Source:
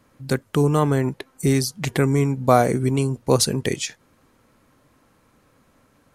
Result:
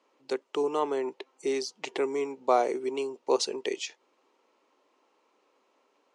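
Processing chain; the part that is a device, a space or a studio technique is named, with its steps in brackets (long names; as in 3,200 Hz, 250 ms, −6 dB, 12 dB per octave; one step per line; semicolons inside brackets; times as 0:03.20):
phone speaker on a table (loudspeaker in its box 340–6,800 Hz, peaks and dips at 390 Hz +6 dB, 900 Hz +6 dB, 1,600 Hz −7 dB, 2,800 Hz +5 dB)
level −8.5 dB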